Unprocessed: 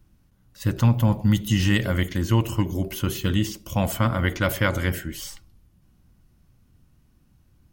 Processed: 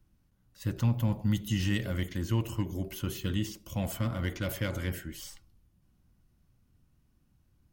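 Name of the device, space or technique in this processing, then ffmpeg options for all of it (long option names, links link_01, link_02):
one-band saturation: -filter_complex "[0:a]acrossover=split=550|2100[link_01][link_02][link_03];[link_02]asoftclip=type=tanh:threshold=-32.5dB[link_04];[link_01][link_04][link_03]amix=inputs=3:normalize=0,volume=-8.5dB"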